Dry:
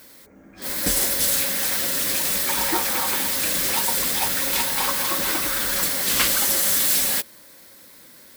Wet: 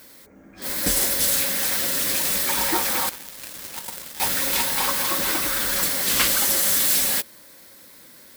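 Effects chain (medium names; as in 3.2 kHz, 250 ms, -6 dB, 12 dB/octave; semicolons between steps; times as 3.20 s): 3.09–4.20 s: power-law waveshaper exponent 3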